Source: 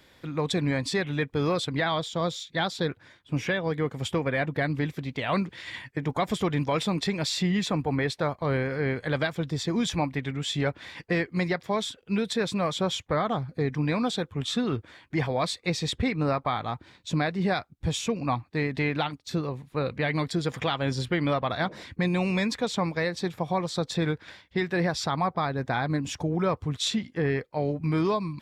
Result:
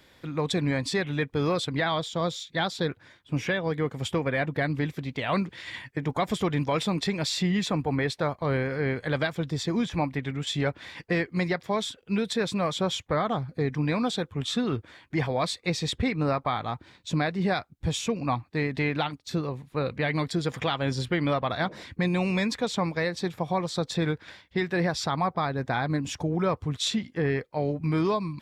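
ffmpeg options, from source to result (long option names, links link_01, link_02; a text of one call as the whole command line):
ffmpeg -i in.wav -filter_complex "[0:a]asettb=1/sr,asplit=3[link_01][link_02][link_03];[link_01]atrim=end=9.764[link_04];[link_02]atrim=start=9.76:end=10.47,asetpts=PTS-STARTPTS,afade=type=in:duration=0.004:curve=qsin,afade=type=out:start_time=0.706:duration=0.004:curve=qsin,acrossover=split=2500[link_05][link_06];[link_06]acompressor=threshold=-42dB:ratio=4:attack=1:release=60[link_07];[link_05][link_07]amix=inputs=2:normalize=0[link_08];[link_03]atrim=start=10.466[link_09];[link_04][link_08]acrossfade=duration=0.004:curve1=hsin:curve2=qsin[link_10];[link_10][link_09]acrossfade=duration=0.004:curve1=qsin:curve2=hsin" out.wav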